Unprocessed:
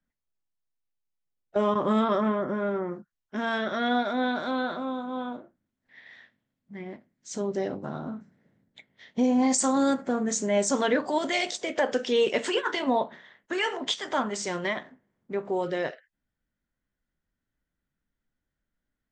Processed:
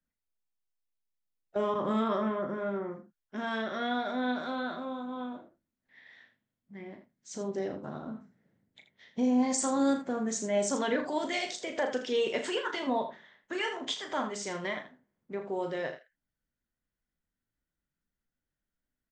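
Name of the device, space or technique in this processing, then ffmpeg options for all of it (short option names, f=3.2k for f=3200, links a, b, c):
slapback doubling: -filter_complex "[0:a]asplit=3[a][b][c];[b]adelay=36,volume=-8.5dB[d];[c]adelay=80,volume=-11dB[e];[a][d][e]amix=inputs=3:normalize=0,volume=-6dB"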